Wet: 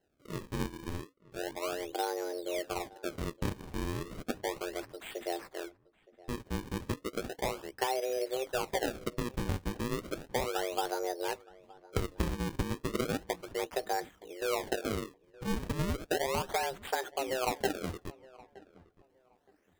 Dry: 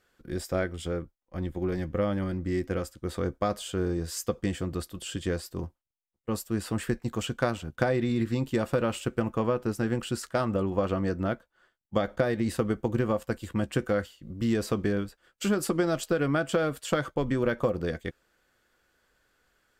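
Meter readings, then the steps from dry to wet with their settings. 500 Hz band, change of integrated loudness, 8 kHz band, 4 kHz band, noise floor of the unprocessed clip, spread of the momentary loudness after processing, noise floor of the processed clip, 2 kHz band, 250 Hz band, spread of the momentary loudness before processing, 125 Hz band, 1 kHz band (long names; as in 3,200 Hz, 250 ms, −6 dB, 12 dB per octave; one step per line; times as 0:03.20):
−6.0 dB, −6.0 dB, −2.5 dB, −1.0 dB, −78 dBFS, 10 LU, −69 dBFS, −4.0 dB, −9.5 dB, 8 LU, −9.0 dB, −0.5 dB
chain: frequency shifter +260 Hz
sample-and-hold swept by an LFO 37×, swing 160% 0.34 Hz
feedback echo with a low-pass in the loop 919 ms, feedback 24%, low-pass 1,800 Hz, level −21 dB
level −6.5 dB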